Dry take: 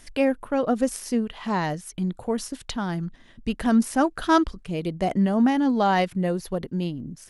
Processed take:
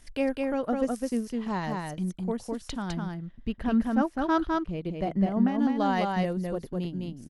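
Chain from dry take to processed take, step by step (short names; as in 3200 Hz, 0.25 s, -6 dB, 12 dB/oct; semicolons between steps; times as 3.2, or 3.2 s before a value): 2.93–5.59 bell 8900 Hz -13.5 dB 1.5 oct; transient shaper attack +1 dB, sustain -7 dB; low shelf 140 Hz +6 dB; echo 0.206 s -3 dB; gain -7 dB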